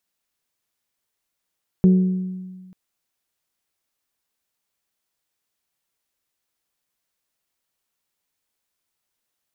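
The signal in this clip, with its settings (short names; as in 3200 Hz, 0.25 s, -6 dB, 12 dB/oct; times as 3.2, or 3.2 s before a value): glass hit bell, lowest mode 185 Hz, decay 1.56 s, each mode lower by 11 dB, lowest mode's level -9 dB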